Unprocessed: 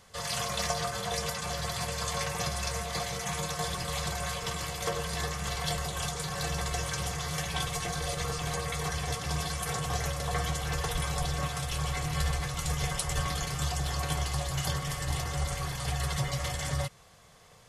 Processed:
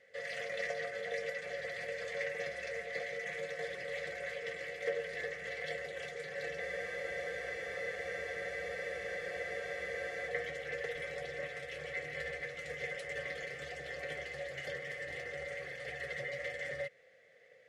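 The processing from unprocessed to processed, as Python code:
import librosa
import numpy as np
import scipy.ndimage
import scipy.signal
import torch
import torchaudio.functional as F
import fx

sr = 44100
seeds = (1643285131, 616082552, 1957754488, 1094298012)

y = fx.double_bandpass(x, sr, hz=1000.0, octaves=1.9)
y = fx.spec_freeze(y, sr, seeds[0], at_s=6.61, hold_s=3.66)
y = y * 10.0 ** (5.0 / 20.0)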